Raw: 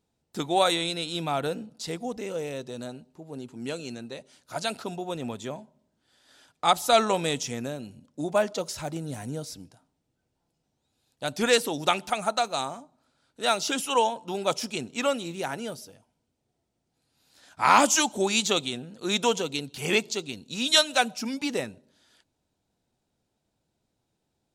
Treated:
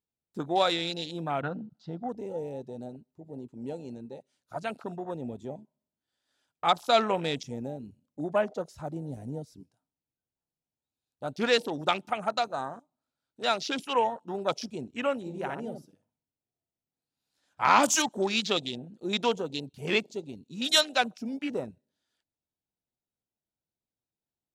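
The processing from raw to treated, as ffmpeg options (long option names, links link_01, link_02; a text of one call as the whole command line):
ffmpeg -i in.wav -filter_complex "[0:a]asettb=1/sr,asplit=3[link_01][link_02][link_03];[link_01]atrim=end=1.424[link_04];[link_02]atrim=start=1.42:end=2.09,asetpts=PTS-STARTPTS,afade=type=in:duration=0.004:curve=qsin,afade=type=out:start_time=0.666:duration=0.004:curve=qsin,highpass=110,equalizer=frequency=130:width_type=q:width=4:gain=7,equalizer=frequency=190:width_type=q:width=4:gain=4,equalizer=frequency=450:width_type=q:width=4:gain=-9,equalizer=frequency=770:width_type=q:width=4:gain=5,equalizer=frequency=1400:width_type=q:width=4:gain=8,equalizer=frequency=2300:width_type=q:width=4:gain=-8,lowpass=frequency=4700:width=0.5412,lowpass=frequency=4700:width=1.3066[link_05];[link_03]atrim=start=2.086[link_06];[link_04][link_05]acrossfade=duration=0.004:curve1=hsin:curve2=qsin[link_07];[link_07][link_06]acrossfade=duration=0.004:curve1=qsin:curve2=hsin,asettb=1/sr,asplit=3[link_08][link_09][link_10];[link_08]atrim=end=15.204[link_11];[link_09]atrim=start=15.2:end=17.69,asetpts=PTS-STARTPTS,afade=type=in:duration=0.004:curve=qsin,afade=type=out:start_time=2.486:duration=0.004:curve=qsin,asplit=2[link_12][link_13];[link_13]adelay=61,lowpass=frequency=1200:poles=1,volume=-4dB,asplit=2[link_14][link_15];[link_15]adelay=61,lowpass=frequency=1200:poles=1,volume=0.29,asplit=2[link_16][link_17];[link_17]adelay=61,lowpass=frequency=1200:poles=1,volume=0.29,asplit=2[link_18][link_19];[link_19]adelay=61,lowpass=frequency=1200:poles=1,volume=0.29[link_20];[link_12][link_14][link_16][link_18][link_20]amix=inputs=5:normalize=0,atrim=end_sample=109809[link_21];[link_10]atrim=start=17.686[link_22];[link_11][link_21]acrossfade=duration=0.004:curve1=hsin:curve2=qsin[link_23];[link_23][link_22]acrossfade=duration=0.004:curve1=qsin:curve2=hsin,afwtdn=0.02,volume=-2.5dB" out.wav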